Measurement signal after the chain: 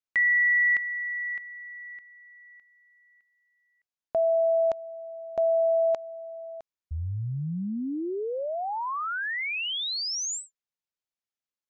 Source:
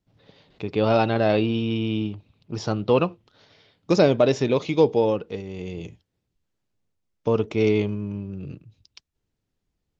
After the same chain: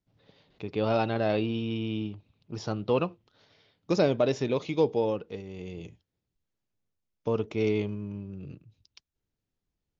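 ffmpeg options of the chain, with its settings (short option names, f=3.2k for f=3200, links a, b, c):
-af "aresample=16000,aresample=44100,volume=-6.5dB"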